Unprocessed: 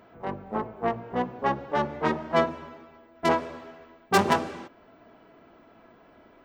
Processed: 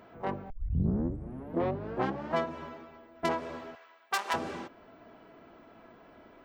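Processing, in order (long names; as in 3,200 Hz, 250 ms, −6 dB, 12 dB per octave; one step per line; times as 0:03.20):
0:03.75–0:04.34: high-pass filter 1,000 Hz 12 dB per octave
downward compressor 5 to 1, threshold −27 dBFS, peak gain reduction 9.5 dB
0:00.50: tape start 1.85 s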